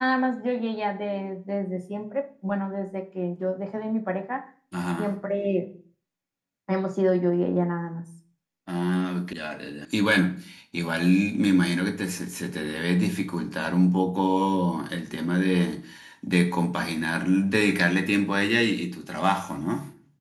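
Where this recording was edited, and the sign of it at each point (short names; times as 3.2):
9.33 sound cut off
9.85 sound cut off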